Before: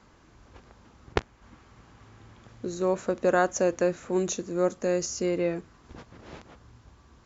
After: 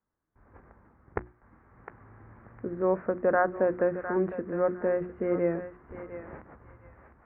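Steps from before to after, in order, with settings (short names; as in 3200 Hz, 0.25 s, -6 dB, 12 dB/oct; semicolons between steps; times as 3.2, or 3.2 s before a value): AGC gain up to 8.5 dB; gate with hold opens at -45 dBFS; steep low-pass 2000 Hz 48 dB/oct; notches 60/120/180/240/300/360 Hz; thinning echo 0.707 s, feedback 27%, high-pass 920 Hz, level -7.5 dB; gain -8 dB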